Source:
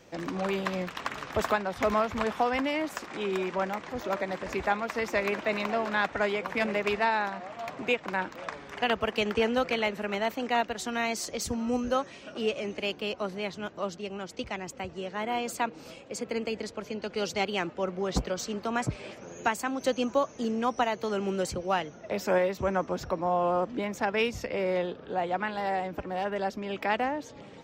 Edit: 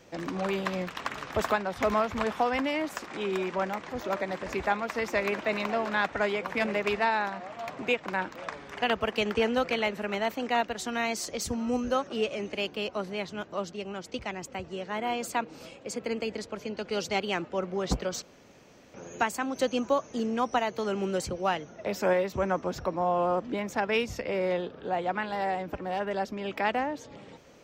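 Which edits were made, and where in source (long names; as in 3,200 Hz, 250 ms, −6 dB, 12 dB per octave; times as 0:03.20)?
0:12.07–0:12.32: remove
0:18.47–0:19.19: fill with room tone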